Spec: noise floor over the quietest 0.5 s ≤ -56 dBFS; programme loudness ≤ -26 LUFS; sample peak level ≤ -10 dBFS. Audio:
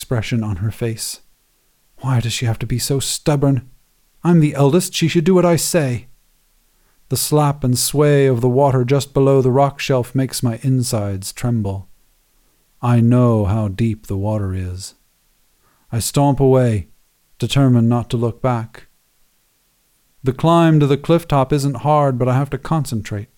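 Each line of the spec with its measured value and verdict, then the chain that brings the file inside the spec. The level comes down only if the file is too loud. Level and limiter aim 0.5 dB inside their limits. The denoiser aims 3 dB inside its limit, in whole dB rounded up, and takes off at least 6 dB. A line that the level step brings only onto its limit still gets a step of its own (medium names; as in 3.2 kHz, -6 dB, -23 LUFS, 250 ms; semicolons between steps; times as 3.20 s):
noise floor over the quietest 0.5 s -61 dBFS: pass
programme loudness -17.0 LUFS: fail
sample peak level -3.5 dBFS: fail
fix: trim -9.5 dB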